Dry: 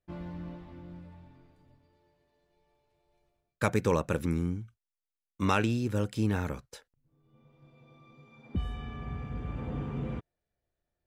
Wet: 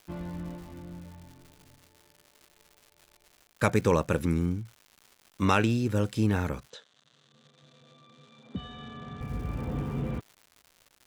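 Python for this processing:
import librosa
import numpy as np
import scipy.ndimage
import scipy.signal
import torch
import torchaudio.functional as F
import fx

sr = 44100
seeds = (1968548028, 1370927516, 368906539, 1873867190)

y = fx.dmg_crackle(x, sr, seeds[0], per_s=250.0, level_db=-46.0)
y = fx.cabinet(y, sr, low_hz=180.0, low_slope=12, high_hz=6400.0, hz=(340.0, 860.0, 2300.0, 3600.0, 5100.0), db=(-9, -7, -8, 8, -8), at=(6.7, 9.21))
y = F.gain(torch.from_numpy(y), 3.0).numpy()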